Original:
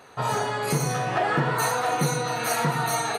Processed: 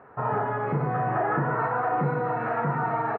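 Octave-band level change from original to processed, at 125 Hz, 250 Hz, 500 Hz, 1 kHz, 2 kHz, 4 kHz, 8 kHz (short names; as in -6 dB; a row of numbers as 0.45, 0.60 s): -1.0 dB, -1.0 dB, -0.5 dB, 0.0 dB, -4.0 dB, under -25 dB, under -40 dB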